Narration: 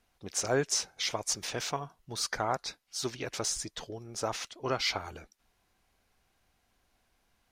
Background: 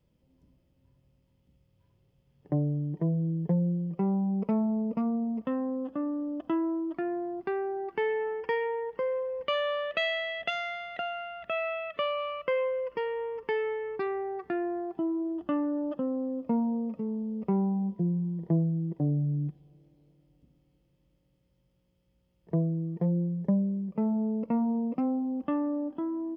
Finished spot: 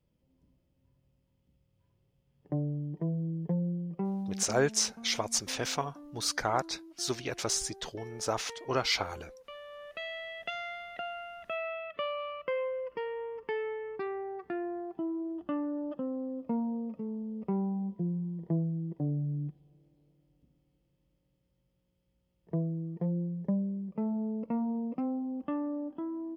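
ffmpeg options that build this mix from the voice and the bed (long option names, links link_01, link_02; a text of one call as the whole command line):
ffmpeg -i stem1.wav -i stem2.wav -filter_complex "[0:a]adelay=4050,volume=1.5dB[link_01];[1:a]volume=9dB,afade=type=out:start_time=3.97:duration=0.69:silence=0.211349,afade=type=in:start_time=9.68:duration=1.02:silence=0.211349[link_02];[link_01][link_02]amix=inputs=2:normalize=0" out.wav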